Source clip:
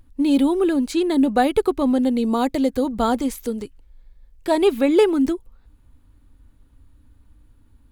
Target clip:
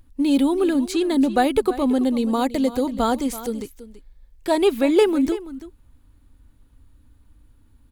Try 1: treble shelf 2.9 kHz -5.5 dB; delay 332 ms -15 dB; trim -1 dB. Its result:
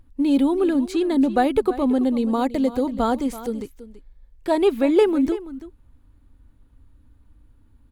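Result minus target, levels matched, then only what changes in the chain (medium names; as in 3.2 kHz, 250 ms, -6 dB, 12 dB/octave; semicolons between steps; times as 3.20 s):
8 kHz band -7.5 dB
change: treble shelf 2.9 kHz +3 dB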